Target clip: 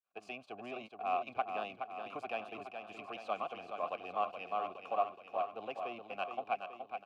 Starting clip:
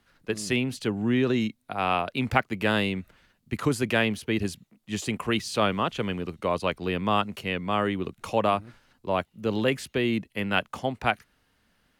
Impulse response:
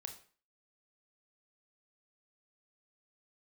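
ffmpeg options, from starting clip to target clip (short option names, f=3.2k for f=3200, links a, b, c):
-filter_complex "[0:a]aeval=exprs='if(lt(val(0),0),0.447*val(0),val(0))':c=same,agate=range=-33dB:threshold=-55dB:ratio=3:detection=peak,atempo=1.7,asplit=3[a][b][c];[a]bandpass=f=730:t=q:w=8,volume=0dB[d];[b]bandpass=f=1.09k:t=q:w=8,volume=-6dB[e];[c]bandpass=f=2.44k:t=q:w=8,volume=-9dB[f];[d][e][f]amix=inputs=3:normalize=0,asplit=2[g][h];[h]aecho=0:1:422|844|1266|1688|2110|2532|2954|3376:0.447|0.264|0.155|0.0917|0.0541|0.0319|0.0188|0.0111[i];[g][i]amix=inputs=2:normalize=0"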